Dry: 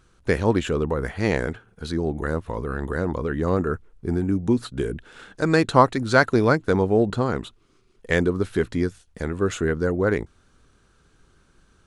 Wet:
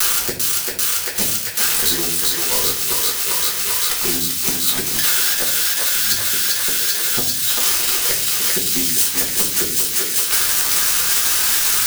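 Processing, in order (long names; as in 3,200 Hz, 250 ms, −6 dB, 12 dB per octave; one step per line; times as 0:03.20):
spike at every zero crossing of −11 dBFS
low-shelf EQ 270 Hz −9.5 dB
bit reduction 6 bits
gate with flip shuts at −9 dBFS, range −35 dB
feedback echo with a high-pass in the loop 392 ms, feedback 85%, high-pass 820 Hz, level −4 dB
convolution reverb RT60 0.45 s, pre-delay 5 ms, DRR −4 dB
multiband upward and downward compressor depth 100%
level +1.5 dB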